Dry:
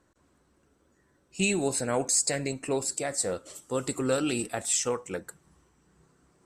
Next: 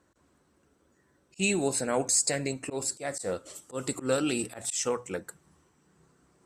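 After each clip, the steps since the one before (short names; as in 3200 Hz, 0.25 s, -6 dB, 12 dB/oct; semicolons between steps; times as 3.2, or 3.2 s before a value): HPF 41 Hz 6 dB/oct; notches 60/120 Hz; auto swell 0.106 s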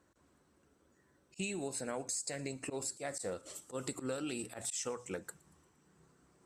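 compressor 6:1, threshold -33 dBFS, peak gain reduction 12 dB; thin delay 0.116 s, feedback 57%, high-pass 3900 Hz, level -22 dB; gain -3 dB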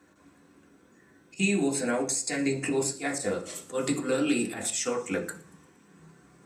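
reverb RT60 0.45 s, pre-delay 3 ms, DRR -0.5 dB; gain +7.5 dB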